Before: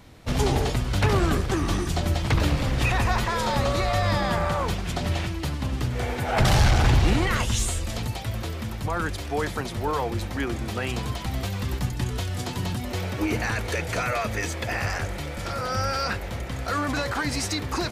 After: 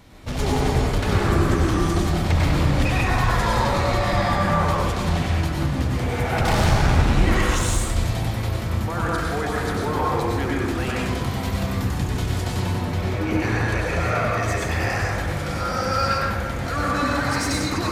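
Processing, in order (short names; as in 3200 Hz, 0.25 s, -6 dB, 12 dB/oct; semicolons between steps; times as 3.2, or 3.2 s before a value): 12.65–14.48 high shelf 4700 Hz -7 dB; soft clip -20 dBFS, distortion -12 dB; plate-style reverb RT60 1.6 s, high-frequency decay 0.35×, pre-delay 85 ms, DRR -4.5 dB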